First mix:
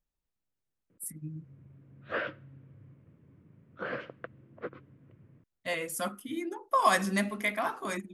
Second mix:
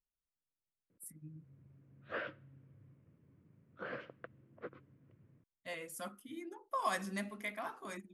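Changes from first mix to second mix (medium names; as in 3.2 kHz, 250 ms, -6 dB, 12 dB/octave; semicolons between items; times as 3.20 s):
speech -11.0 dB; background -7.5 dB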